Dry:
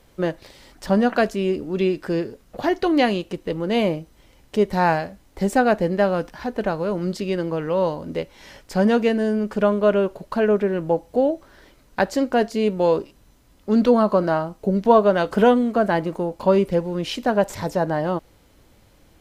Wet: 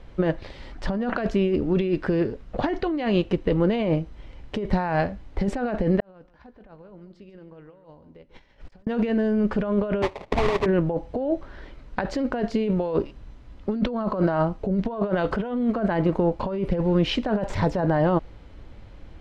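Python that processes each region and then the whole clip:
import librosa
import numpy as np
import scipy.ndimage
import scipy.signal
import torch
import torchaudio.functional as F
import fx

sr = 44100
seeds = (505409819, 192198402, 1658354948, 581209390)

y = fx.chain(x, sr, fx.gate_flip(shuts_db=-27.0, range_db=-29),
    fx.over_compress(threshold_db=-53.0, ratio=-0.5),
    fx.echo_single(ms=144, db=-14.0), at=(6.0, 8.87))
y = fx.chain(y, sr, fx.highpass(hz=490.0, slope=12),
    fx.sample_hold(seeds[0], rate_hz=1500.0, jitter_pct=20), at=(10.02, 10.66))
y = fx.over_compress(y, sr, threshold_db=-24.0, ratio=-1.0)
y = scipy.signal.sosfilt(scipy.signal.butter(2, 3200.0, 'lowpass', fs=sr, output='sos'), y)
y = fx.low_shelf(y, sr, hz=88.0, db=11.5)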